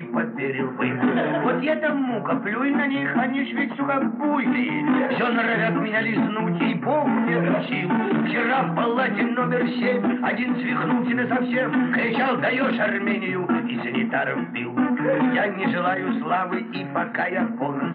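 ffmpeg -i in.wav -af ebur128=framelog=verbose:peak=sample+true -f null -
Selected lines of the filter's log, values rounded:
Integrated loudness:
  I:         -22.6 LUFS
  Threshold: -32.6 LUFS
Loudness range:
  LRA:         1.4 LU
  Threshold: -42.4 LUFS
  LRA low:   -23.2 LUFS
  LRA high:  -21.8 LUFS
Sample peak:
  Peak:      -10.1 dBFS
True peak:
  Peak:      -10.1 dBFS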